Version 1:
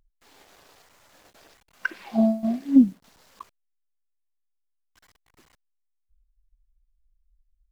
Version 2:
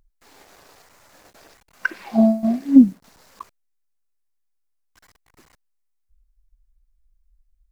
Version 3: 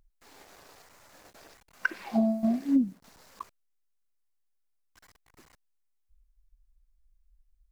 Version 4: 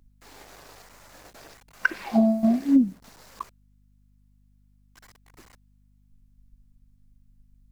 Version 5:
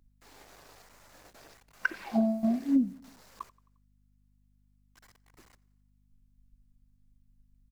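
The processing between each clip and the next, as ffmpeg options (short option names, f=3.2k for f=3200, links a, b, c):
-af "equalizer=f=3.2k:t=o:w=0.61:g=-4.5,volume=5dB"
-af "acompressor=threshold=-17dB:ratio=10,volume=-3.5dB"
-af "aeval=exprs='val(0)+0.000562*(sin(2*PI*50*n/s)+sin(2*PI*2*50*n/s)/2+sin(2*PI*3*50*n/s)/3+sin(2*PI*4*50*n/s)/4+sin(2*PI*5*50*n/s)/5)':c=same,volume=5.5dB"
-af "aecho=1:1:88|176|264|352:0.0668|0.0381|0.0217|0.0124,volume=-6.5dB"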